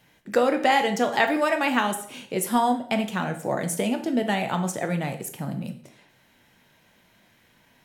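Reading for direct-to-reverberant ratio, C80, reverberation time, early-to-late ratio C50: 5.5 dB, 15.0 dB, 0.50 s, 11.0 dB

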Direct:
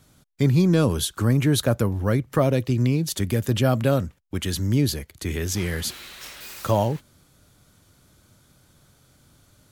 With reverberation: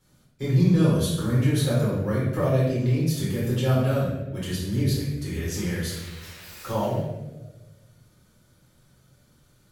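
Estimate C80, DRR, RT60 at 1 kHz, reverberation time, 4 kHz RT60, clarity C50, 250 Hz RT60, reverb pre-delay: 3.0 dB, -9.0 dB, 0.90 s, 1.1 s, 0.75 s, 0.0 dB, 1.4 s, 4 ms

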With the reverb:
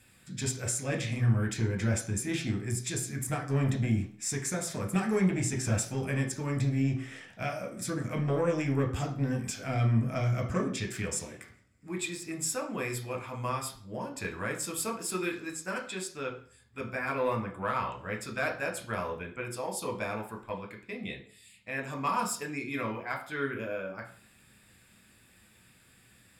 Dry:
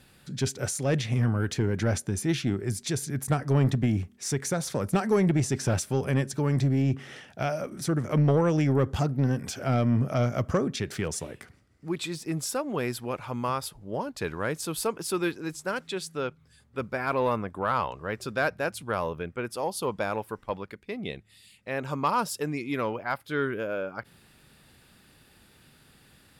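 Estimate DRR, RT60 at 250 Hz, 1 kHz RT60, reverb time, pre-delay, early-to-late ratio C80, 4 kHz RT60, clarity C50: 1.5 dB, 0.50 s, 0.45 s, 0.45 s, 6 ms, 14.5 dB, 0.45 s, 10.0 dB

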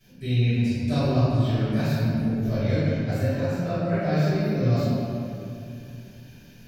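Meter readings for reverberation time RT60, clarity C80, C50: 2.6 s, -3.0 dB, -5.5 dB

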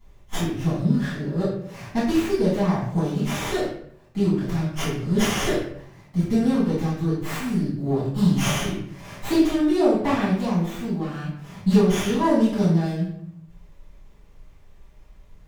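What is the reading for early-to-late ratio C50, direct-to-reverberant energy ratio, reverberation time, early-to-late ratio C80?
2.0 dB, -11.5 dB, 0.65 s, 5.5 dB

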